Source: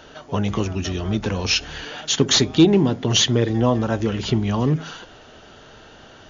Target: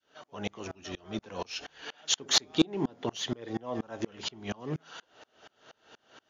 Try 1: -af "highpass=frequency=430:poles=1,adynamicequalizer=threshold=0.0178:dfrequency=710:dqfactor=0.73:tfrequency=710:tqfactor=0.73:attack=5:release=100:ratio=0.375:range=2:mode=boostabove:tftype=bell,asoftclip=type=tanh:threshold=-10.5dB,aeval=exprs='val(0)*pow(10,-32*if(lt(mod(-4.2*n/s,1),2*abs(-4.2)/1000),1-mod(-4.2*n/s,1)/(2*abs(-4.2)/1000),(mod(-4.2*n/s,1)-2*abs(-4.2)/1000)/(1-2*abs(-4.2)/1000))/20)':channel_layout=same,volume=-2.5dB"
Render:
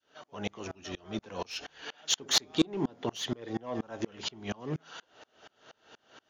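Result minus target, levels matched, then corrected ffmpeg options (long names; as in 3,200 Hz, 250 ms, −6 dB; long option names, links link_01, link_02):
soft clipping: distortion +10 dB
-af "highpass=frequency=430:poles=1,adynamicequalizer=threshold=0.0178:dfrequency=710:dqfactor=0.73:tfrequency=710:tqfactor=0.73:attack=5:release=100:ratio=0.375:range=2:mode=boostabove:tftype=bell,asoftclip=type=tanh:threshold=-4dB,aeval=exprs='val(0)*pow(10,-32*if(lt(mod(-4.2*n/s,1),2*abs(-4.2)/1000),1-mod(-4.2*n/s,1)/(2*abs(-4.2)/1000),(mod(-4.2*n/s,1)-2*abs(-4.2)/1000)/(1-2*abs(-4.2)/1000))/20)':channel_layout=same,volume=-2.5dB"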